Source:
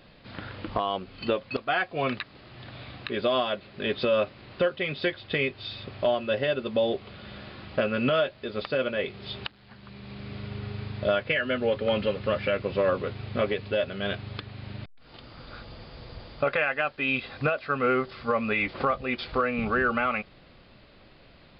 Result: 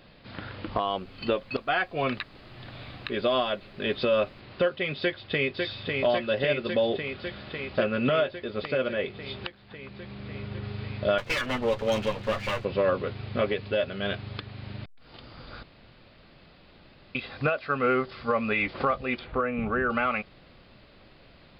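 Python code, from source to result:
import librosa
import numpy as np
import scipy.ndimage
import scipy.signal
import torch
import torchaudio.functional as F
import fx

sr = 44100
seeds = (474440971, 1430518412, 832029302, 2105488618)

y = fx.dmg_noise_colour(x, sr, seeds[0], colour='brown', level_db=-56.0, at=(0.83, 4.39), fade=0.02)
y = fx.echo_throw(y, sr, start_s=4.99, length_s=0.64, ms=550, feedback_pct=80, wet_db=-3.5)
y = fx.high_shelf(y, sr, hz=3800.0, db=-5.5, at=(7.82, 10.64))
y = fx.lower_of_two(y, sr, delay_ms=8.9, at=(11.18, 12.65))
y = fx.air_absorb(y, sr, metres=440.0, at=(19.19, 19.9))
y = fx.edit(y, sr, fx.room_tone_fill(start_s=15.63, length_s=1.52), tone=tone)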